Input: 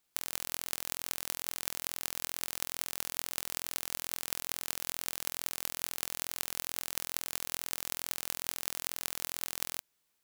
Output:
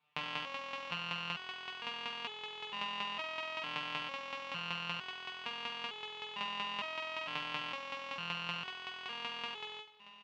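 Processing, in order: cabinet simulation 110–3200 Hz, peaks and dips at 160 Hz +7 dB, 340 Hz -8 dB, 1 kHz +10 dB, 1.6 kHz -4 dB, 2.7 kHz +8 dB; feedback delay 629 ms, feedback 36%, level -17.5 dB; resonator arpeggio 2.2 Hz 150–430 Hz; trim +15.5 dB

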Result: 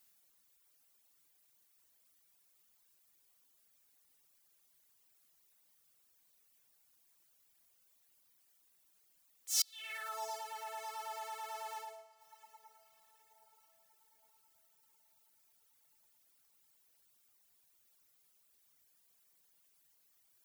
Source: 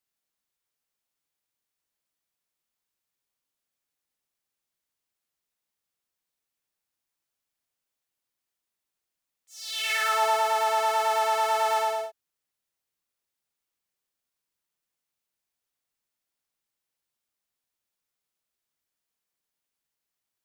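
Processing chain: inverted gate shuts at -29 dBFS, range -27 dB; treble shelf 8 kHz +10 dB; on a send: echo that smears into a reverb 737 ms, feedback 43%, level -15.5 dB; on the sum: reverb removal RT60 1.5 s; trim +10 dB

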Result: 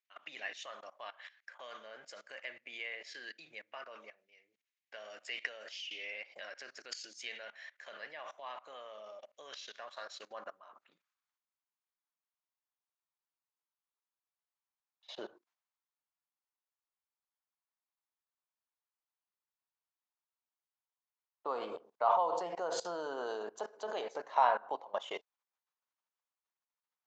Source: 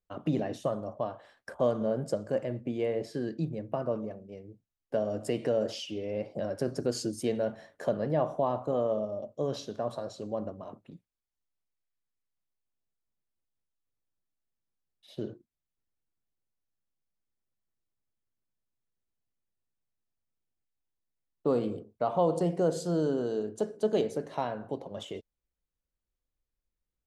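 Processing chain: elliptic low-pass 6.9 kHz; treble shelf 2.8 kHz -5.5 dB; level held to a coarse grid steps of 20 dB; high-pass sweep 2.1 kHz -> 950 Hz, 9.79–11.67 s; trim +12 dB

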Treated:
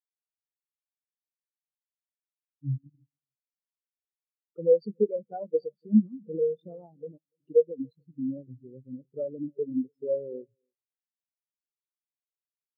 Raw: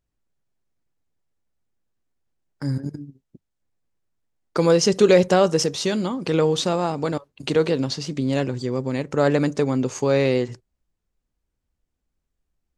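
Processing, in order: knee-point frequency compression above 3.4 kHz 1.5:1; 4.79–6.00 s: rippled EQ curve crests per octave 1.8, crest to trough 10 dB; compression 3:1, threshold -21 dBFS, peak gain reduction 9 dB; feedback echo behind a low-pass 289 ms, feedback 35%, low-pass 980 Hz, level -11 dB; spectral contrast expander 4:1

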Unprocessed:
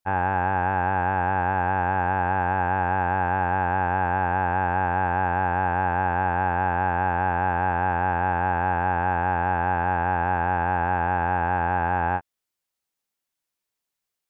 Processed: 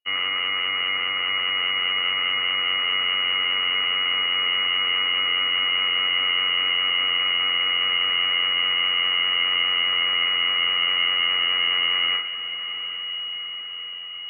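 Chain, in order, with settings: bass shelf 360 Hz +7.5 dB; reverse; upward compressor, threshold -24 dBFS; reverse; full-wave rectifier; echo that smears into a reverb 800 ms, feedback 60%, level -12 dB; on a send at -4.5 dB: reverberation RT60 0.65 s, pre-delay 3 ms; on the sum: frequency inversion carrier 2.9 kHz; trim -5 dB

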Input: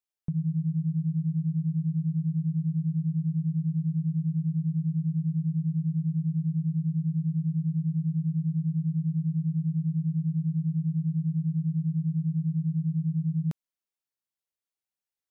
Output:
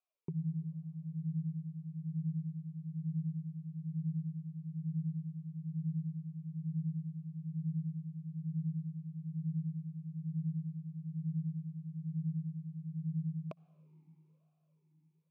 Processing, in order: reverberation RT60 4.7 s, pre-delay 58 ms, DRR 19 dB; talking filter a-u 1.1 Hz; trim +12 dB

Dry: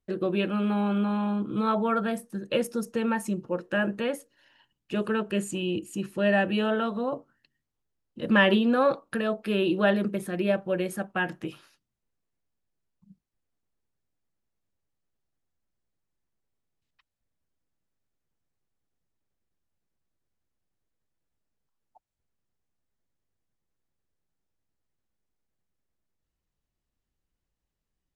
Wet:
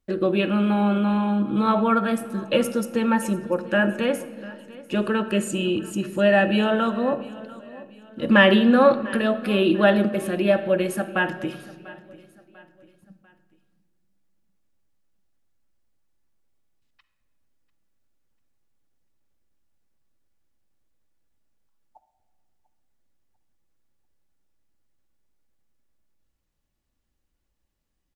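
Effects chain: feedback delay 694 ms, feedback 41%, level -20 dB; on a send at -9 dB: reverberation RT60 1.6 s, pre-delay 3 ms; on the sum: trim +5 dB

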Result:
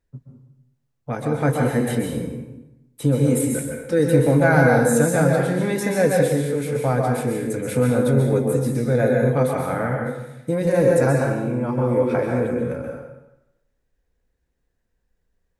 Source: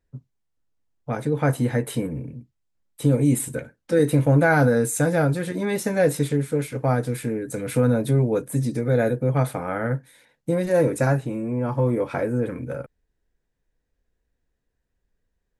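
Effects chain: plate-style reverb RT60 0.93 s, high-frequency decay 0.8×, pre-delay 115 ms, DRR 0 dB

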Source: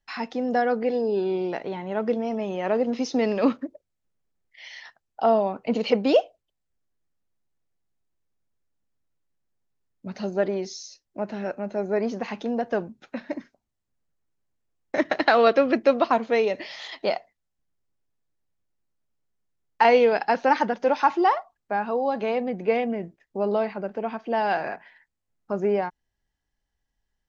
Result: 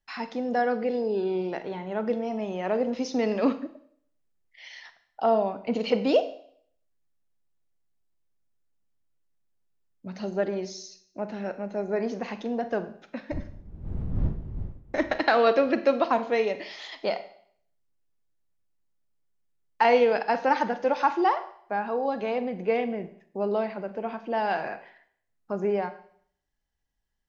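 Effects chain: 13.31–15.16 s: wind noise 95 Hz -28 dBFS; Schroeder reverb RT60 0.6 s, combs from 33 ms, DRR 11 dB; trim -3 dB

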